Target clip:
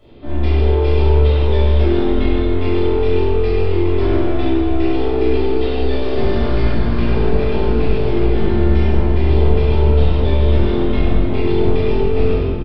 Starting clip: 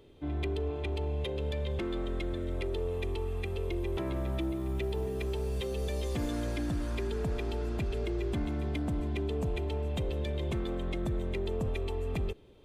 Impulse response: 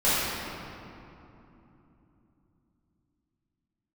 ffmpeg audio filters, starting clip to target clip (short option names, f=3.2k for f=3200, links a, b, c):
-filter_complex "[0:a]aresample=11025,aeval=exprs='clip(val(0),-1,0.0126)':c=same,aresample=44100,aecho=1:1:18|43:0.376|0.473[a];[1:a]atrim=start_sample=2205,asetrate=52920,aresample=44100[b];[a][b]afir=irnorm=-1:irlink=0"